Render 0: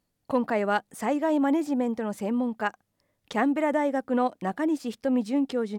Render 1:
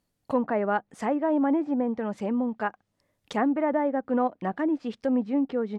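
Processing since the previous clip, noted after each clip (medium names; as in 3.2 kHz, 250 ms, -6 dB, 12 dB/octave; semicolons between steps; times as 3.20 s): low-pass that closes with the level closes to 1.6 kHz, closed at -23 dBFS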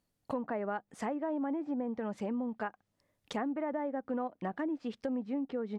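compression 4:1, threshold -29 dBFS, peak gain reduction 8.5 dB; trim -3.5 dB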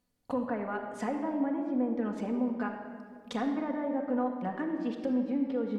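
simulated room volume 3300 m³, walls mixed, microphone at 1.9 m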